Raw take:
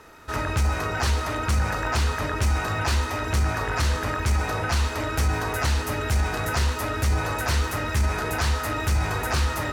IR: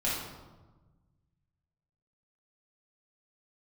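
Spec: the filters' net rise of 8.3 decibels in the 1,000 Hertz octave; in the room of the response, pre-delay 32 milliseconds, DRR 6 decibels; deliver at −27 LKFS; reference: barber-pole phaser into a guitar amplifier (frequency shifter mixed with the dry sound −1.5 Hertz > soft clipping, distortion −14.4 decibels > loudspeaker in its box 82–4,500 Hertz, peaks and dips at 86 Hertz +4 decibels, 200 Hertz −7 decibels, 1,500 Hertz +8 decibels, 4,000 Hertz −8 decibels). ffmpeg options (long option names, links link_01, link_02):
-filter_complex "[0:a]equalizer=frequency=1000:width_type=o:gain=8.5,asplit=2[link_01][link_02];[1:a]atrim=start_sample=2205,adelay=32[link_03];[link_02][link_03]afir=irnorm=-1:irlink=0,volume=-14dB[link_04];[link_01][link_04]amix=inputs=2:normalize=0,asplit=2[link_05][link_06];[link_06]afreqshift=-1.5[link_07];[link_05][link_07]amix=inputs=2:normalize=1,asoftclip=threshold=-20.5dB,highpass=82,equalizer=frequency=86:width_type=q:width=4:gain=4,equalizer=frequency=200:width_type=q:width=4:gain=-7,equalizer=frequency=1500:width_type=q:width=4:gain=8,equalizer=frequency=4000:width_type=q:width=4:gain=-8,lowpass=frequency=4500:width=0.5412,lowpass=frequency=4500:width=1.3066,volume=-1dB"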